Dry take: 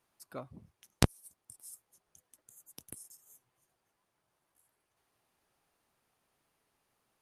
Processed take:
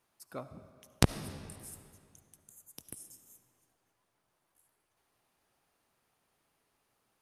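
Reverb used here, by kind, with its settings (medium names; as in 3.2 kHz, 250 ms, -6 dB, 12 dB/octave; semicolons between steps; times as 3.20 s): algorithmic reverb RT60 2.3 s, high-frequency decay 0.85×, pre-delay 30 ms, DRR 11.5 dB; trim +1 dB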